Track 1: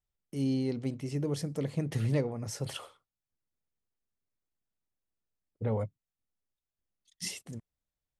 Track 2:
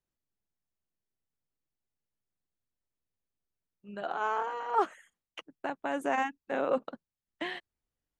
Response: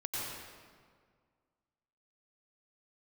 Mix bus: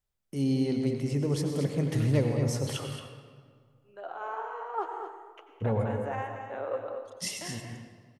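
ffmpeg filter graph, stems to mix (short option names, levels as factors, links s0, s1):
-filter_complex "[0:a]volume=0.944,asplit=3[s0][s1][s2];[s1]volume=0.631[s3];[s2]volume=0.531[s4];[1:a]highshelf=f=2200:g=-11.5,flanger=delay=9.8:depth=3.7:regen=76:speed=2:shape=sinusoidal,highpass=f=360:w=0.5412,highpass=f=360:w=1.3066,volume=0.794,asplit=3[s5][s6][s7];[s6]volume=0.501[s8];[s7]volume=0.531[s9];[2:a]atrim=start_sample=2205[s10];[s3][s8]amix=inputs=2:normalize=0[s11];[s11][s10]afir=irnorm=-1:irlink=0[s12];[s4][s9]amix=inputs=2:normalize=0,aecho=0:1:226:1[s13];[s0][s5][s12][s13]amix=inputs=4:normalize=0"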